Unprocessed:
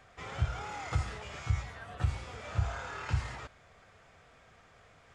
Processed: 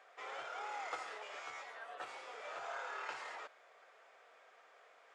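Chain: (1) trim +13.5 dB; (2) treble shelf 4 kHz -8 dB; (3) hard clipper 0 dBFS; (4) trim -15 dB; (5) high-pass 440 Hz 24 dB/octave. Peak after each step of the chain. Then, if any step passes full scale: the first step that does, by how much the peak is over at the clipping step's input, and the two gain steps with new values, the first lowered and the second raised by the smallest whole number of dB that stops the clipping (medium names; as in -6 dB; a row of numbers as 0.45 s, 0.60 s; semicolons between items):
-5.0 dBFS, -5.0 dBFS, -5.0 dBFS, -20.0 dBFS, -27.5 dBFS; nothing clips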